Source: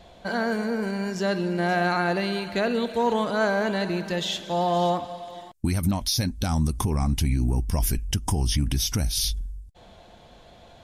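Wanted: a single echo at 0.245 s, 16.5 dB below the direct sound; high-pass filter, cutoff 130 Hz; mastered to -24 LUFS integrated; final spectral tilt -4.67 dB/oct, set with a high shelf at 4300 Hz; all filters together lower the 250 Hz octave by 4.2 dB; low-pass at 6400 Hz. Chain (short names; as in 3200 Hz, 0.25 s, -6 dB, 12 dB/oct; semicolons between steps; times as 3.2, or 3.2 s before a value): HPF 130 Hz; LPF 6400 Hz; bell 250 Hz -5 dB; high shelf 4300 Hz -3.5 dB; echo 0.245 s -16.5 dB; gain +4 dB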